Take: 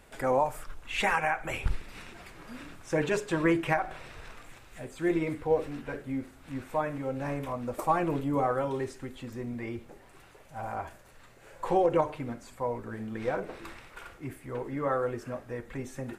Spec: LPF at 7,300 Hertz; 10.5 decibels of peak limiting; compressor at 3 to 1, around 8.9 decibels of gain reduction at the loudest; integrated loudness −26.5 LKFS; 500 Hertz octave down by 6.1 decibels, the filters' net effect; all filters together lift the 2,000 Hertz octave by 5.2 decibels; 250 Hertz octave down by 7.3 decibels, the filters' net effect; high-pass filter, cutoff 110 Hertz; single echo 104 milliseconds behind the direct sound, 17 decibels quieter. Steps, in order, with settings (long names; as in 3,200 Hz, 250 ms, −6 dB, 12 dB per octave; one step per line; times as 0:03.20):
high-pass filter 110 Hz
low-pass filter 7,300 Hz
parametric band 250 Hz −8 dB
parametric band 500 Hz −5.5 dB
parametric band 2,000 Hz +7 dB
downward compressor 3 to 1, threshold −33 dBFS
brickwall limiter −29.5 dBFS
single-tap delay 104 ms −17 dB
level +14.5 dB